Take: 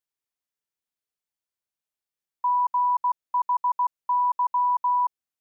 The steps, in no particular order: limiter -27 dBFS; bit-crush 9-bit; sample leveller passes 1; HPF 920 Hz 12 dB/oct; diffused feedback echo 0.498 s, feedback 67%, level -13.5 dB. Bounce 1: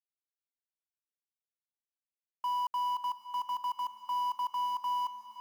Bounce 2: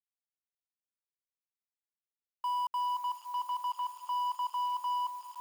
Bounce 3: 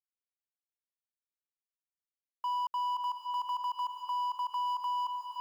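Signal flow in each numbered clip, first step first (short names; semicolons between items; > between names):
sample leveller > HPF > limiter > bit-crush > diffused feedback echo; limiter > diffused feedback echo > sample leveller > bit-crush > HPF; sample leveller > bit-crush > diffused feedback echo > limiter > HPF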